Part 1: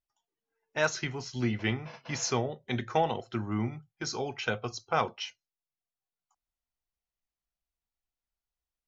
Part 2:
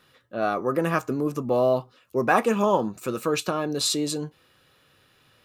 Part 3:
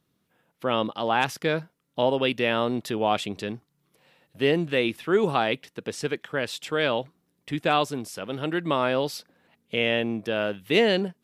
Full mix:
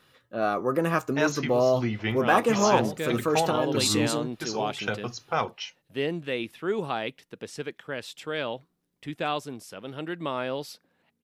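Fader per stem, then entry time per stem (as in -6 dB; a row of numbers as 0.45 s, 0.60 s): +1.0 dB, -1.0 dB, -6.5 dB; 0.40 s, 0.00 s, 1.55 s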